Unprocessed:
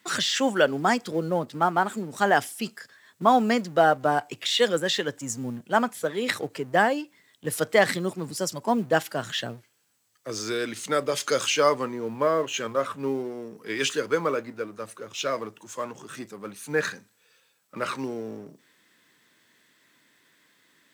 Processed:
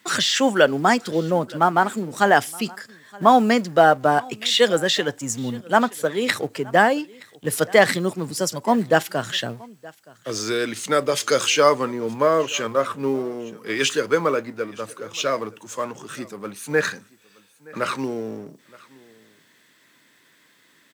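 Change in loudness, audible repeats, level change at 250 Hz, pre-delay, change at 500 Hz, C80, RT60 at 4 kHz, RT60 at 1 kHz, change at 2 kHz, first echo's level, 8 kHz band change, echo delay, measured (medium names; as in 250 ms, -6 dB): +5.0 dB, 1, +5.0 dB, no reverb, +5.0 dB, no reverb, no reverb, no reverb, +5.0 dB, -23.5 dB, +5.0 dB, 921 ms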